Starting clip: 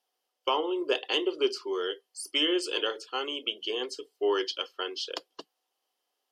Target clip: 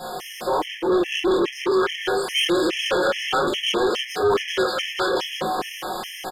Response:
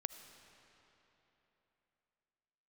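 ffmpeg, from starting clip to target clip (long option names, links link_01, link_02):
-filter_complex "[0:a]aeval=exprs='val(0)+0.5*0.0299*sgn(val(0))':channel_layout=same,equalizer=frequency=220:width=1.5:gain=6,aecho=1:1:5.5:0.72,asplit=2[link_01][link_02];[link_02]alimiter=limit=-20dB:level=0:latency=1,volume=-3dB[link_03];[link_01][link_03]amix=inputs=2:normalize=0,highshelf=frequency=2700:gain=-11,aecho=1:1:32.07|157.4|195.3:0.708|0.355|1,flanger=delay=18.5:depth=5:speed=1.1,acrossover=split=550|2900[link_04][link_05][link_06];[link_05]dynaudnorm=framelen=410:gausssize=7:maxgain=11dB[link_07];[link_04][link_07][link_06]amix=inputs=3:normalize=0,aresample=32000,aresample=44100,asoftclip=type=tanh:threshold=-20dB,afftfilt=real='re*gt(sin(2*PI*2.4*pts/sr)*(1-2*mod(floor(b*sr/1024/1700),2)),0)':imag='im*gt(sin(2*PI*2.4*pts/sr)*(1-2*mod(floor(b*sr/1024/1700),2)),0)':win_size=1024:overlap=0.75,volume=4.5dB"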